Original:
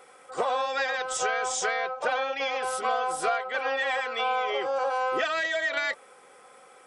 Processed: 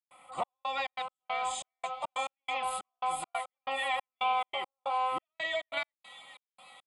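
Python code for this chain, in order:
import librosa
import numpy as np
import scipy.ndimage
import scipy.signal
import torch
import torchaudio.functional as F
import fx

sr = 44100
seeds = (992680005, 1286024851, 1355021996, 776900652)

y = fx.echo_wet_highpass(x, sr, ms=651, feedback_pct=57, hz=3700.0, wet_db=-9.5)
y = fx.step_gate(y, sr, bpm=139, pattern='.xxx..xx.x.', floor_db=-60.0, edge_ms=4.5)
y = fx.fixed_phaser(y, sr, hz=1600.0, stages=6)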